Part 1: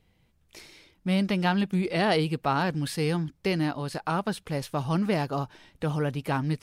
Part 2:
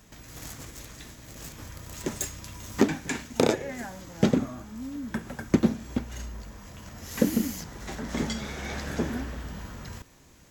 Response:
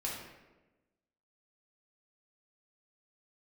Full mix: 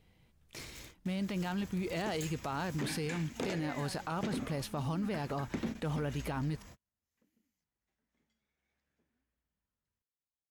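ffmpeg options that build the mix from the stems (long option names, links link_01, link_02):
-filter_complex "[0:a]acompressor=threshold=-28dB:ratio=16,volume=-0.5dB,asplit=2[link_01][link_02];[1:a]adynamicequalizer=threshold=0.00316:dfrequency=2400:dqfactor=1.3:tfrequency=2400:tqfactor=1.3:attack=5:release=100:ratio=0.375:range=3.5:mode=boostabove:tftype=bell,asoftclip=type=hard:threshold=-13dB,volume=-8.5dB[link_03];[link_02]apad=whole_len=463451[link_04];[link_03][link_04]sidechaingate=range=-44dB:threshold=-57dB:ratio=16:detection=peak[link_05];[link_01][link_05]amix=inputs=2:normalize=0,alimiter=level_in=4dB:limit=-24dB:level=0:latency=1:release=16,volume=-4dB"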